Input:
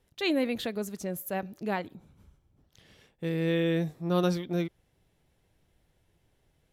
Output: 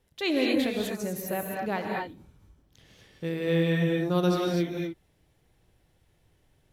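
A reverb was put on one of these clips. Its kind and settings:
reverb whose tail is shaped and stops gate 270 ms rising, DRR −0.5 dB

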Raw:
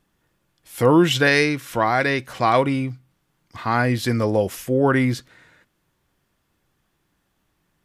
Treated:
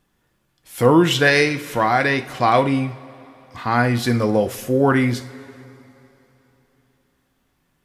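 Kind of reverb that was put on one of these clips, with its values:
coupled-rooms reverb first 0.4 s, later 3.5 s, from −19 dB, DRR 7.5 dB
level +1 dB

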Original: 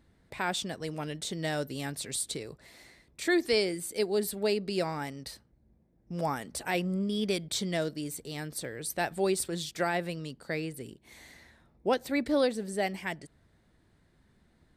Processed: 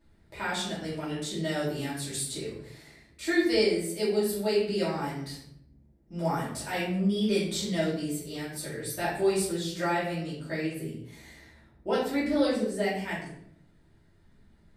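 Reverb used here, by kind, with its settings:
rectangular room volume 130 cubic metres, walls mixed, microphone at 2.7 metres
level −8.5 dB

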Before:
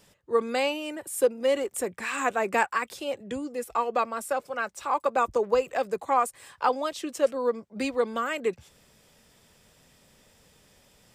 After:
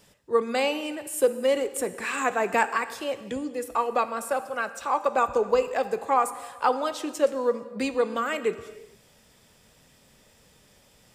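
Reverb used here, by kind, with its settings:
reverb whose tail is shaped and stops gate 490 ms falling, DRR 11 dB
level +1 dB

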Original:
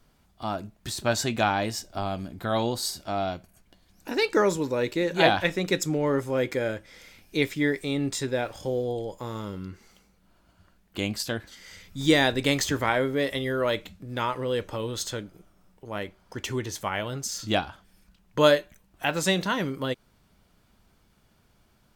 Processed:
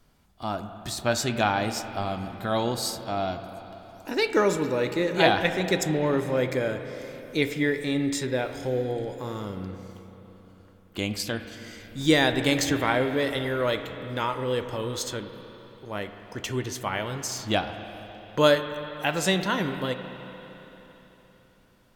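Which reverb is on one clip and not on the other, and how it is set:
spring reverb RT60 3.8 s, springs 32/39/47 ms, chirp 45 ms, DRR 8 dB

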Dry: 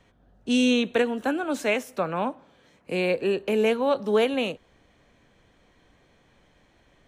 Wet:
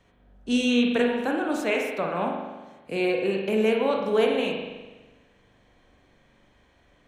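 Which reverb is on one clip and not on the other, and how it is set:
spring reverb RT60 1.2 s, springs 41 ms, chirp 20 ms, DRR 0.5 dB
level −2.5 dB

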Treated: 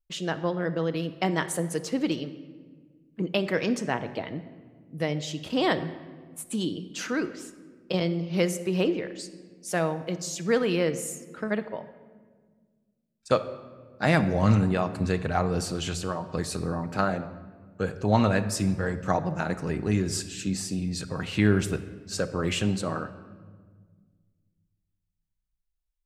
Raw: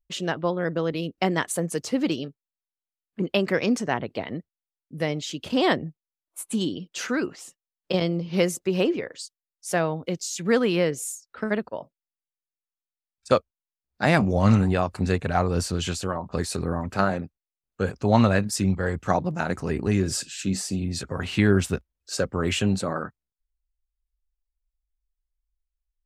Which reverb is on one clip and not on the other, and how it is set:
rectangular room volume 1,700 cubic metres, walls mixed, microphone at 0.56 metres
level −3 dB

